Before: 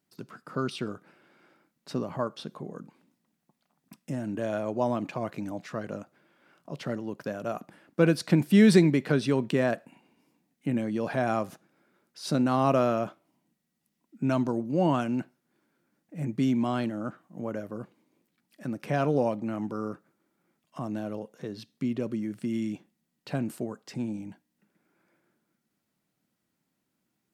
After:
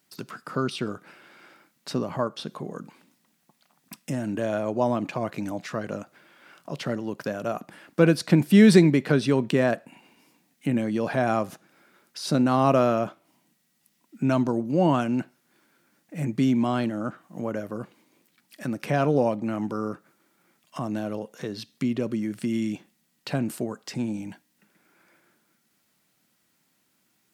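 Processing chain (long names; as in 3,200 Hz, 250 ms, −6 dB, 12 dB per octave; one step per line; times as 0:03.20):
one half of a high-frequency compander encoder only
level +3.5 dB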